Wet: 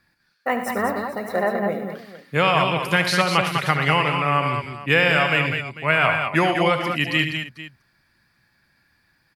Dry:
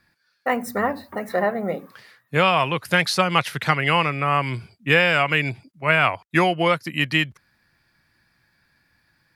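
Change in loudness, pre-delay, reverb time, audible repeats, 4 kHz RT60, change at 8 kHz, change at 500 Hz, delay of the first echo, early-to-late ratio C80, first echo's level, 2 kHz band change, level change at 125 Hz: +0.5 dB, none, none, 4, none, +0.5 dB, +0.5 dB, 73 ms, none, -10.5 dB, +0.5 dB, +1.0 dB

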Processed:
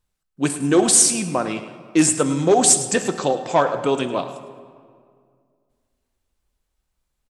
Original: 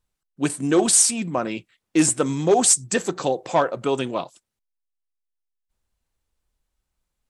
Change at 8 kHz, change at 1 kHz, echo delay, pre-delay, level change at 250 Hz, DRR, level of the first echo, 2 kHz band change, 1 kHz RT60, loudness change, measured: +2.5 dB, +3.0 dB, 0.106 s, 7 ms, +2.5 dB, 8.5 dB, -15.0 dB, +2.5 dB, 2.0 s, +2.5 dB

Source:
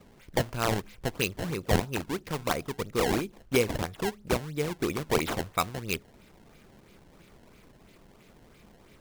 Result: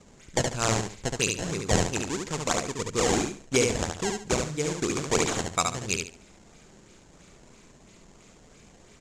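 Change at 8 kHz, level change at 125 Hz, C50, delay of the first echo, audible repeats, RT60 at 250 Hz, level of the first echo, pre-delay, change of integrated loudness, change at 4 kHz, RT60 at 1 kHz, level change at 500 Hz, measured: +11.0 dB, +1.5 dB, none, 71 ms, 3, none, -4.0 dB, none, +3.0 dB, +4.5 dB, none, +1.5 dB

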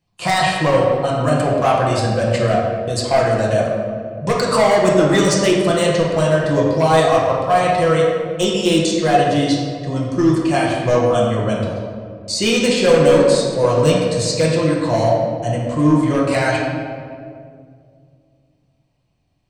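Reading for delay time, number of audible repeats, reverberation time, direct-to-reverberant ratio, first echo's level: none, none, 2.3 s, -4.5 dB, none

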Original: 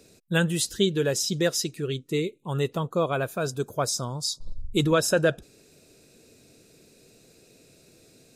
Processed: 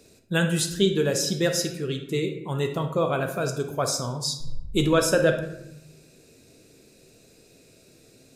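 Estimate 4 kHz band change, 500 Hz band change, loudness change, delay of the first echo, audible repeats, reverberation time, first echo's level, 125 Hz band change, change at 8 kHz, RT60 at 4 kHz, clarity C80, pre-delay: +0.5 dB, +1.5 dB, +1.0 dB, none, none, 0.85 s, none, +1.0 dB, +0.5 dB, 0.55 s, 11.0 dB, 15 ms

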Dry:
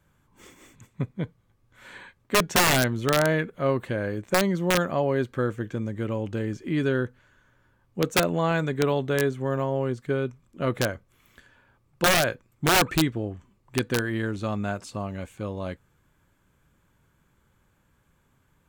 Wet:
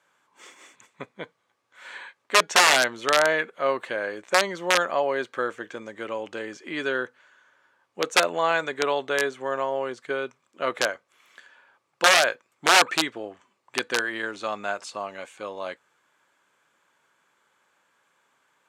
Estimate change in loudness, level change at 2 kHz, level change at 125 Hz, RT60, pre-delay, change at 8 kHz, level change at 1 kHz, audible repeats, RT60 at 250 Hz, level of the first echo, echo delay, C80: +2.0 dB, +5.0 dB, -20.5 dB, none, none, +2.5 dB, +4.0 dB, none, none, none, none, none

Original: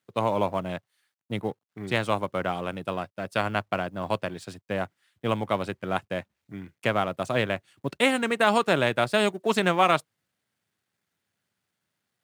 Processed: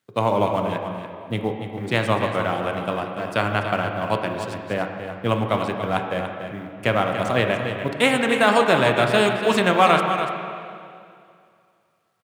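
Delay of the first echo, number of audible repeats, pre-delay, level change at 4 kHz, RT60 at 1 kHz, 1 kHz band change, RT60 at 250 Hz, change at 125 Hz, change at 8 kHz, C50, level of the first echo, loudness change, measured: 0.288 s, 1, 6 ms, +5.0 dB, 2.3 s, +5.5 dB, 2.5 s, +6.5 dB, +4.0 dB, 3.5 dB, -9.5 dB, +5.0 dB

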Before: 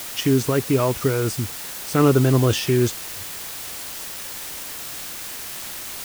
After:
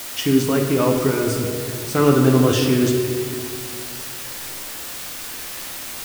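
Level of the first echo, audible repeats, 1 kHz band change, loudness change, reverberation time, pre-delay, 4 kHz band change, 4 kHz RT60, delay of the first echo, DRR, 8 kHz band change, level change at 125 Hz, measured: none, none, +2.0 dB, +2.0 dB, 2.1 s, 12 ms, +2.0 dB, 1.5 s, none, 1.5 dB, +1.0 dB, -0.5 dB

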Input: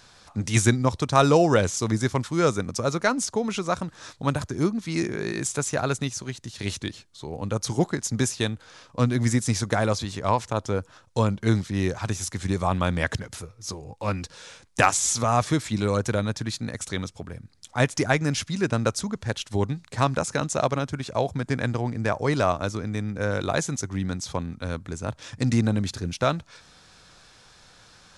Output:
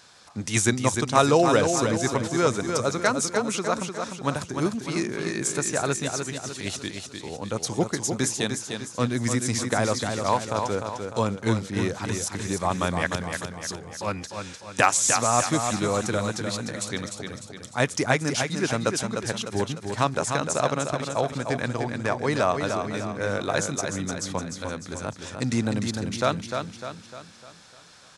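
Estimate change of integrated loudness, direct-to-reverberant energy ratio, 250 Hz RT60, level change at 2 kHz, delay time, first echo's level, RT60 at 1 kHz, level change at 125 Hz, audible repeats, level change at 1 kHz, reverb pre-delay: 0.0 dB, none, none, +1.0 dB, 0.301 s, -6.0 dB, none, -4.0 dB, 5, +1.0 dB, none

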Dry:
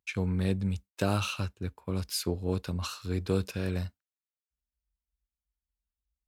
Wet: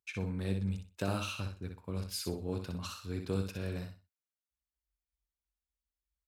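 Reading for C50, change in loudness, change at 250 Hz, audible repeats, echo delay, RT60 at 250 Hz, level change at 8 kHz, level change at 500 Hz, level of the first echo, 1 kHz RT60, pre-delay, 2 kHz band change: none, -5.5 dB, -5.5 dB, 3, 62 ms, none, -5.5 dB, -6.0 dB, -6.0 dB, none, none, -5.5 dB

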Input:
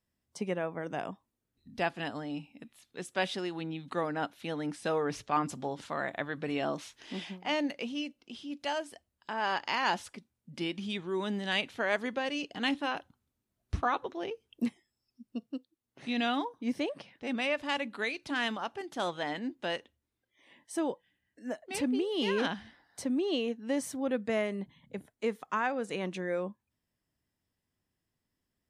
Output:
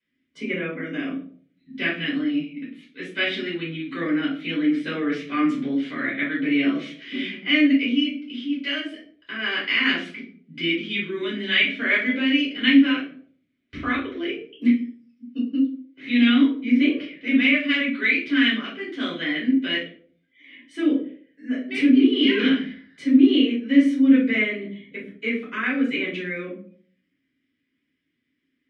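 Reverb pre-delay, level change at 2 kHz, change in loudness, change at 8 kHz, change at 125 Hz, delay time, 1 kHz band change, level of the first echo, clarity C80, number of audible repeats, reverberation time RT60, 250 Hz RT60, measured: 3 ms, +13.0 dB, +12.0 dB, n/a, +4.0 dB, none, -2.5 dB, none, 10.5 dB, none, 0.50 s, 0.65 s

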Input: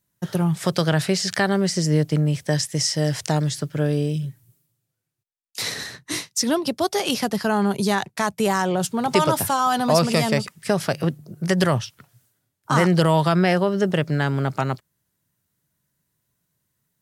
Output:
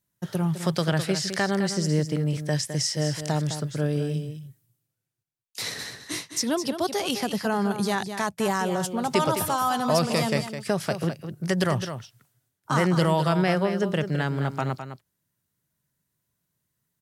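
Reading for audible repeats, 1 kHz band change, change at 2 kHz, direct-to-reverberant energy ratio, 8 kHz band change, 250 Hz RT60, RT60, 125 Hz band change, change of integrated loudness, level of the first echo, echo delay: 1, -4.0 dB, -4.0 dB, none, -4.0 dB, none, none, -4.0 dB, -4.0 dB, -9.5 dB, 0.209 s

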